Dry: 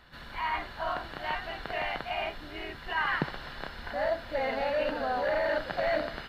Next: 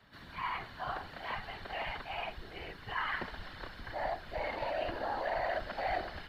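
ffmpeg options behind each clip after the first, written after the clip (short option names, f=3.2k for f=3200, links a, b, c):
-af "afreqshift=58,afftfilt=real='hypot(re,im)*cos(2*PI*random(0))':imag='hypot(re,im)*sin(2*PI*random(1))':win_size=512:overlap=0.75,asubboost=boost=4.5:cutoff=53"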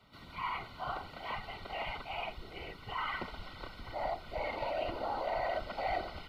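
-af "asuperstop=centerf=1700:order=20:qfactor=5.2"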